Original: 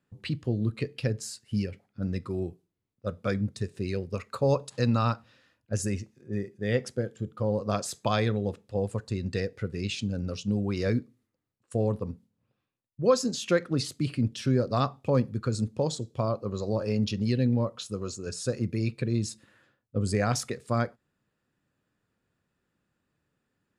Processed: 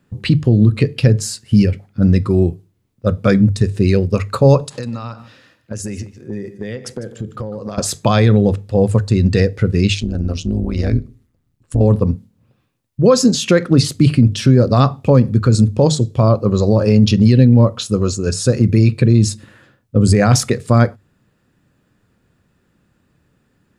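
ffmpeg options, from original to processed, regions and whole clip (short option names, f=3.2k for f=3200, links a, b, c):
-filter_complex "[0:a]asettb=1/sr,asplit=3[a][b][c];[a]atrim=end=4.604[d];[b]atrim=start=4.6:end=7.78,asetpts=PTS-STARTPTS,afade=t=in:d=0.004:c=qsin,afade=t=out:st=3.176:d=0.004:c=qsin,highpass=f=200:p=1,acompressor=threshold=-38dB:ratio=20:attack=3.2:release=140:knee=1:detection=peak,aecho=1:1:151:0.158,atrim=end_sample=140238[e];[c]atrim=start=7.776[f];[d][e]acrossfade=d=0.004:c1=hsin:c2=qsin[g];[g][f]acrossfade=d=0.004:c1=qsin:c2=hsin,asettb=1/sr,asplit=3[h][i][j];[h]atrim=end=9.944[k];[i]atrim=start=9.94:end=11.81,asetpts=PTS-STARTPTS,afade=t=in:d=0.004:c=qsin,afade=t=out:st=1.866:d=0.004:c=qsin,asubboost=boost=6.5:cutoff=170,acompressor=threshold=-34dB:ratio=2:attack=3.2:release=140:knee=1:detection=peak,tremolo=f=160:d=0.824[l];[j]atrim=start=11.806[m];[k][l]acrossfade=d=0.004:c1=hsin:c2=qsin[n];[n][m]acrossfade=d=0.004:c1=qsin:c2=hsin,lowshelf=f=250:g=8,bandreject=f=50:t=h:w=6,bandreject=f=100:t=h:w=6,bandreject=f=150:t=h:w=6,alimiter=level_in=15dB:limit=-1dB:release=50:level=0:latency=1,volume=-1dB"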